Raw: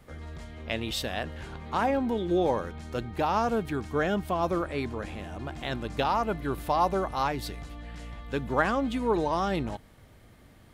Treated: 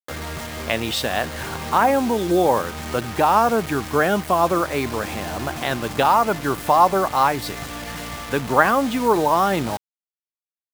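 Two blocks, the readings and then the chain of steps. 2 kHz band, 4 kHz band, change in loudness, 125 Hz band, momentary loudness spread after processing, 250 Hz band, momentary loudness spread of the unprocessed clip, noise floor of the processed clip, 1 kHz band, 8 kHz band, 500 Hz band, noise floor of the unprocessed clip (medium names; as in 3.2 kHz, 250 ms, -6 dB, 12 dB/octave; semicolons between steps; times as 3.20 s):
+10.5 dB, +9.0 dB, +9.0 dB, +5.5 dB, 12 LU, +6.5 dB, 15 LU, under -85 dBFS, +11.0 dB, +14.5 dB, +8.5 dB, -55 dBFS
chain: high-pass 77 Hz 24 dB/octave; peaking EQ 1.1 kHz +6.5 dB 2.1 oct; in parallel at +1 dB: compression 6:1, threshold -36 dBFS, peak gain reduction 20.5 dB; on the sum: bit crusher 6-bit; trim +3.5 dB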